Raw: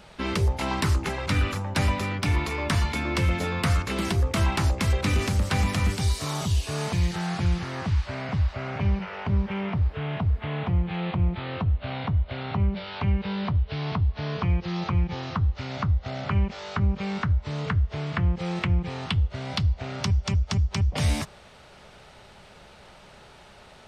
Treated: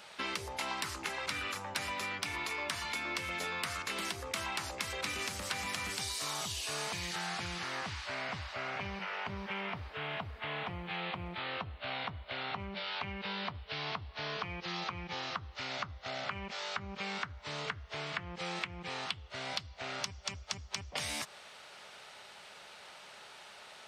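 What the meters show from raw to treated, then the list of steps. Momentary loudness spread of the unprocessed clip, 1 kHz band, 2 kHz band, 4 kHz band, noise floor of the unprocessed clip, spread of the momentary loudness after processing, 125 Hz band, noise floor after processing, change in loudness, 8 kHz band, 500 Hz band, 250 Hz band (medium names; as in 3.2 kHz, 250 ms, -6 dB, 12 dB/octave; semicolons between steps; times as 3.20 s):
4 LU, -6.5 dB, -4.0 dB, -3.0 dB, -50 dBFS, 6 LU, -23.5 dB, -53 dBFS, -11.0 dB, -3.0 dB, -10.0 dB, -17.5 dB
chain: high-pass 1.3 kHz 6 dB/octave; compression, threshold -36 dBFS, peak gain reduction 11 dB; trim +2 dB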